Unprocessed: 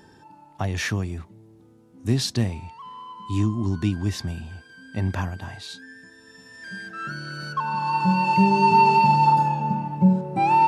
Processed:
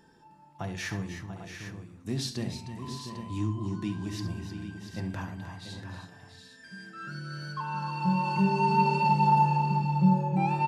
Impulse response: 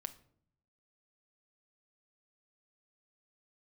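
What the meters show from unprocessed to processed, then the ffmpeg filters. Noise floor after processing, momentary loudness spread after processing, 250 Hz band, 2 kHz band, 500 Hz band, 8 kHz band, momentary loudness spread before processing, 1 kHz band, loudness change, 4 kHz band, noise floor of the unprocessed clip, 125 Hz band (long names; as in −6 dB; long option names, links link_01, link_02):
−55 dBFS, 18 LU, −5.0 dB, −7.5 dB, −6.0 dB, −7.0 dB, 21 LU, −7.5 dB, −6.5 dB, −7.0 dB, −52 dBFS, −4.5 dB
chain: -filter_complex "[0:a]flanger=delay=4.3:depth=2.6:regen=-58:speed=0.46:shape=triangular,aecho=1:1:68|308|309|689|754|799:0.251|0.15|0.299|0.316|0.178|0.299[link_01];[1:a]atrim=start_sample=2205[link_02];[link_01][link_02]afir=irnorm=-1:irlink=0,volume=-1.5dB"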